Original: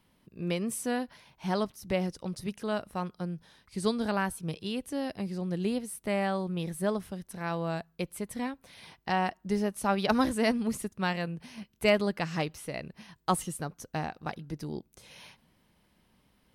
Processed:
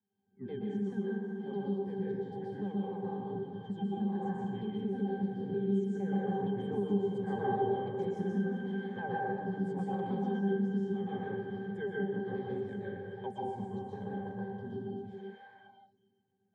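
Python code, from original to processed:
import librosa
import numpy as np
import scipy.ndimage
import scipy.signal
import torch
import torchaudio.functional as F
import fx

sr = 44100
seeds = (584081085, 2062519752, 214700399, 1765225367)

p1 = fx.pitch_ramps(x, sr, semitones=-7.5, every_ms=157)
p2 = fx.doppler_pass(p1, sr, speed_mps=7, closest_m=3.4, pass_at_s=7.43)
p3 = fx.over_compress(p2, sr, threshold_db=-52.0, ratio=-1.0)
p4 = p2 + (p3 * 10.0 ** (-2.0 / 20.0))
p5 = fx.low_shelf(p4, sr, hz=400.0, db=6.0)
p6 = fx.octave_resonator(p5, sr, note='G', decay_s=0.14)
p7 = p6 + fx.echo_feedback(p6, sr, ms=389, feedback_pct=45, wet_db=-15, dry=0)
p8 = fx.rev_plate(p7, sr, seeds[0], rt60_s=1.4, hf_ratio=0.5, predelay_ms=110, drr_db=-6.0)
p9 = fx.noise_reduce_blind(p8, sr, reduce_db=23)
p10 = scipy.signal.sosfilt(scipy.signal.cheby1(2, 1.0, 260.0, 'highpass', fs=sr, output='sos'), p9)
p11 = fx.band_squash(p10, sr, depth_pct=70)
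y = p11 * 10.0 ** (8.5 / 20.0)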